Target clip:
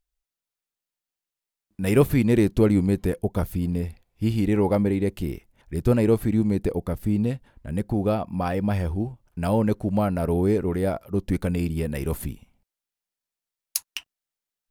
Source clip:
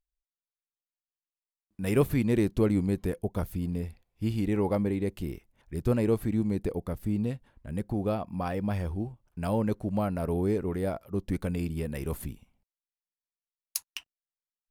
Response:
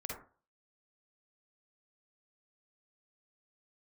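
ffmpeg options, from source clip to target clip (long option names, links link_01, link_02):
-af "bandreject=frequency=1100:width=20,volume=6dB"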